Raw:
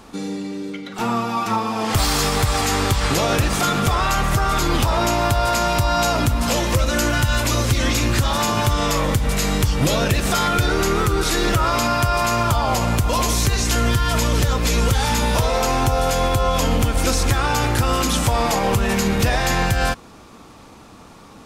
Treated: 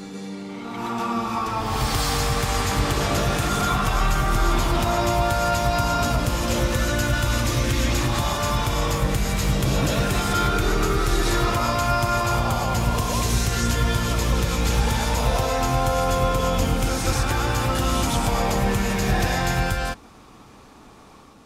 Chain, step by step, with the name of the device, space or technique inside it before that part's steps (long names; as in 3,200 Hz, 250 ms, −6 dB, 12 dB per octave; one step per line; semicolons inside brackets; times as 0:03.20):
reverse reverb (reversed playback; convolution reverb RT60 1.4 s, pre-delay 118 ms, DRR −1 dB; reversed playback)
level −7 dB